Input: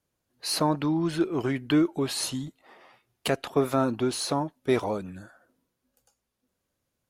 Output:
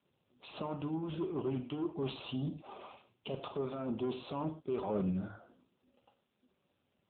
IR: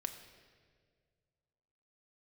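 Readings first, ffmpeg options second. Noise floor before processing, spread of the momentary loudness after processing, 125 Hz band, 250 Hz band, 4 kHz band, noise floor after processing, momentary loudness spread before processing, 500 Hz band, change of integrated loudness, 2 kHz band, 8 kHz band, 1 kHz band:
−82 dBFS, 16 LU, −7.5 dB, −10.5 dB, −16.0 dB, −80 dBFS, 11 LU, −10.0 dB, −11.0 dB, −17.0 dB, below −40 dB, −12.5 dB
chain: -filter_complex "[0:a]alimiter=limit=-19dB:level=0:latency=1:release=183,areverse,acompressor=threshold=-35dB:ratio=12,areverse,aeval=exprs='0.0501*(cos(1*acos(clip(val(0)/0.0501,-1,1)))-cos(1*PI/2))+0.0112*(cos(5*acos(clip(val(0)/0.0501,-1,1)))-cos(5*PI/2))':channel_layout=same,asuperstop=centerf=1800:order=4:qfactor=2[link_01];[1:a]atrim=start_sample=2205,atrim=end_sample=4410,asetrate=35280,aresample=44100[link_02];[link_01][link_02]afir=irnorm=-1:irlink=0" -ar 8000 -c:a libopencore_amrnb -b:a 7950

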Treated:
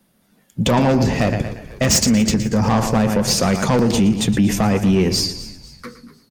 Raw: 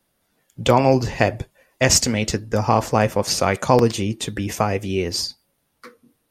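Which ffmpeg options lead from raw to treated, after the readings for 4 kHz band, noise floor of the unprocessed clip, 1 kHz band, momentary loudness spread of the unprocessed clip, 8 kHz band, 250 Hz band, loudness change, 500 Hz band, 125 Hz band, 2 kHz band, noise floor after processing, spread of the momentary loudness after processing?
+2.5 dB, −70 dBFS, −2.0 dB, 9 LU, +1.5 dB, +7.5 dB, +2.5 dB, −1.0 dB, +4.0 dB, 0.0 dB, −60 dBFS, 9 LU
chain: -filter_complex "[0:a]asplit=2[link_01][link_02];[link_02]aecho=0:1:116|232|348|464:0.2|0.0738|0.0273|0.0101[link_03];[link_01][link_03]amix=inputs=2:normalize=0,asoftclip=type=tanh:threshold=-16.5dB,equalizer=frequency=200:width=1.9:gain=12,asplit=2[link_04][link_05];[link_05]asplit=4[link_06][link_07][link_08][link_09];[link_06]adelay=248,afreqshift=-82,volume=-17.5dB[link_10];[link_07]adelay=496,afreqshift=-164,volume=-24.6dB[link_11];[link_08]adelay=744,afreqshift=-246,volume=-31.8dB[link_12];[link_09]adelay=992,afreqshift=-328,volume=-38.9dB[link_13];[link_10][link_11][link_12][link_13]amix=inputs=4:normalize=0[link_14];[link_04][link_14]amix=inputs=2:normalize=0,alimiter=level_in=13dB:limit=-1dB:release=50:level=0:latency=1,volume=-7.5dB"

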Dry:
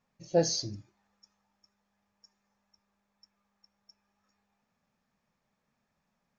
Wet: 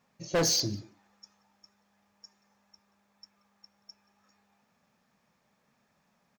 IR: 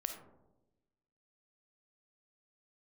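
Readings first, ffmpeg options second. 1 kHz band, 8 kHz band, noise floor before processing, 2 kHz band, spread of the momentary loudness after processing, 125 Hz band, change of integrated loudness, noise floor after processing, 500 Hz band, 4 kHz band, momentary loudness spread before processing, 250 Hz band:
+2.0 dB, can't be measured, −81 dBFS, +10.0 dB, 12 LU, +1.5 dB, +2.0 dB, −73 dBFS, −2.0 dB, +5.5 dB, 16 LU, +0.5 dB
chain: -filter_complex "[0:a]highpass=frequency=120:poles=1,volume=31dB,asoftclip=hard,volume=-31dB,asplit=2[link_01][link_02];[link_02]adelay=180,highpass=300,lowpass=3400,asoftclip=type=hard:threshold=-39.5dB,volume=-17dB[link_03];[link_01][link_03]amix=inputs=2:normalize=0,volume=8dB"

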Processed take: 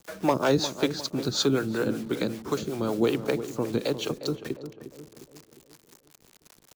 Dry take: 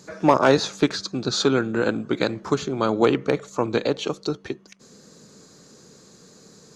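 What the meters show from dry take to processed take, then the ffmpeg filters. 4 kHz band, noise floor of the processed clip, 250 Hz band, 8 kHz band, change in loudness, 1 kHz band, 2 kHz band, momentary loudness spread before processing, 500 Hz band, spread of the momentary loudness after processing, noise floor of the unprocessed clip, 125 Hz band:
−3.0 dB, −62 dBFS, −4.0 dB, −2.0 dB, −5.0 dB, −8.5 dB, −7.0 dB, 10 LU, −5.5 dB, 13 LU, −51 dBFS, −3.0 dB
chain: -filter_complex "[0:a]acrusher=bits=6:mix=0:aa=0.000001,acrossover=split=500|3000[link_01][link_02][link_03];[link_02]acompressor=threshold=-38dB:ratio=1.5[link_04];[link_01][link_04][link_03]amix=inputs=3:normalize=0,acrossover=split=420[link_05][link_06];[link_05]aeval=exprs='val(0)*(1-0.7/2+0.7/2*cos(2*PI*5.3*n/s))':channel_layout=same[link_07];[link_06]aeval=exprs='val(0)*(1-0.7/2-0.7/2*cos(2*PI*5.3*n/s))':channel_layout=same[link_08];[link_07][link_08]amix=inputs=2:normalize=0,asplit=2[link_09][link_10];[link_10]adelay=355,lowpass=frequency=1200:poles=1,volume=-10.5dB,asplit=2[link_11][link_12];[link_12]adelay=355,lowpass=frequency=1200:poles=1,volume=0.52,asplit=2[link_13][link_14];[link_14]adelay=355,lowpass=frequency=1200:poles=1,volume=0.52,asplit=2[link_15][link_16];[link_16]adelay=355,lowpass=frequency=1200:poles=1,volume=0.52,asplit=2[link_17][link_18];[link_18]adelay=355,lowpass=frequency=1200:poles=1,volume=0.52,asplit=2[link_19][link_20];[link_20]adelay=355,lowpass=frequency=1200:poles=1,volume=0.52[link_21];[link_09][link_11][link_13][link_15][link_17][link_19][link_21]amix=inputs=7:normalize=0"

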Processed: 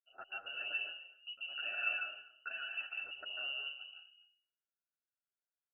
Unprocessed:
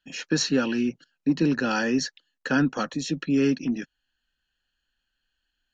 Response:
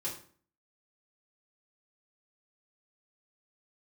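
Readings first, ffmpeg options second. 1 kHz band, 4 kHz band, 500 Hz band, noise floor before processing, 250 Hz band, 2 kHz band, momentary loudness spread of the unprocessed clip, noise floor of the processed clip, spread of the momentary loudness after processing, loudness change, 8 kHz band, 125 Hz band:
−17.0 dB, −7.5 dB, −28.0 dB, −81 dBFS, below −40 dB, −7.5 dB, 8 LU, below −85 dBFS, 13 LU, −14.5 dB, can't be measured, below −40 dB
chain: -filter_complex "[0:a]afwtdn=0.0158,highpass=330,alimiter=limit=-24dB:level=0:latency=1:release=58,asplit=3[link_01][link_02][link_03];[link_01]bandpass=frequency=530:width_type=q:width=8,volume=0dB[link_04];[link_02]bandpass=frequency=1840:width_type=q:width=8,volume=-6dB[link_05];[link_03]bandpass=frequency=2480:width_type=q:width=8,volume=-9dB[link_06];[link_04][link_05][link_06]amix=inputs=3:normalize=0,aecho=1:1:249:0.106,asplit=2[link_07][link_08];[1:a]atrim=start_sample=2205,adelay=142[link_09];[link_08][link_09]afir=irnorm=-1:irlink=0,volume=-3dB[link_10];[link_07][link_10]amix=inputs=2:normalize=0,lowpass=frequency=2700:width_type=q:width=0.5098,lowpass=frequency=2700:width_type=q:width=0.6013,lowpass=frequency=2700:width_type=q:width=0.9,lowpass=frequency=2700:width_type=q:width=2.563,afreqshift=-3200,asplit=2[link_11][link_12];[link_12]adelay=8.9,afreqshift=0.82[link_13];[link_11][link_13]amix=inputs=2:normalize=1,volume=3.5dB"

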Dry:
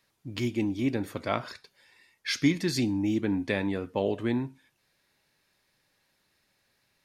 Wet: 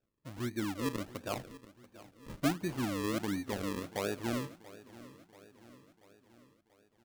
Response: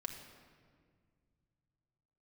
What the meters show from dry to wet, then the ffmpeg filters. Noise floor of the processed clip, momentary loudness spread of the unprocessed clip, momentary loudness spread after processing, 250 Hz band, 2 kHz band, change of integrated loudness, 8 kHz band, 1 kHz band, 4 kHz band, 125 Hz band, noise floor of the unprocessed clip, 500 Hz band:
−73 dBFS, 12 LU, 19 LU, −8.0 dB, −7.0 dB, −7.0 dB, −3.5 dB, −3.0 dB, −8.0 dB, −7.0 dB, −73 dBFS, −6.5 dB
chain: -af "equalizer=frequency=3700:width_type=o:width=1.3:gain=-14.5,acrusher=samples=41:mix=1:aa=0.000001:lfo=1:lforange=41:lforate=1.4,aecho=1:1:685|1370|2055|2740|3425:0.126|0.0705|0.0395|0.0221|0.0124,volume=-7dB"

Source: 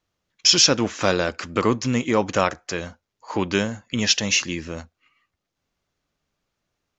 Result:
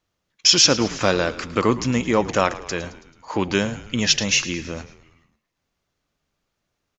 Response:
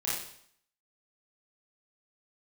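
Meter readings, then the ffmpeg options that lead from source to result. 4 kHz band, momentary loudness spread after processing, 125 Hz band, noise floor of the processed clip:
+1.0 dB, 15 LU, +1.0 dB, −78 dBFS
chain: -filter_complex "[0:a]asplit=6[link_01][link_02][link_03][link_04][link_05][link_06];[link_02]adelay=109,afreqshift=-61,volume=-16dB[link_07];[link_03]adelay=218,afreqshift=-122,volume=-21dB[link_08];[link_04]adelay=327,afreqshift=-183,volume=-26.1dB[link_09];[link_05]adelay=436,afreqshift=-244,volume=-31.1dB[link_10];[link_06]adelay=545,afreqshift=-305,volume=-36.1dB[link_11];[link_01][link_07][link_08][link_09][link_10][link_11]amix=inputs=6:normalize=0,volume=1dB"

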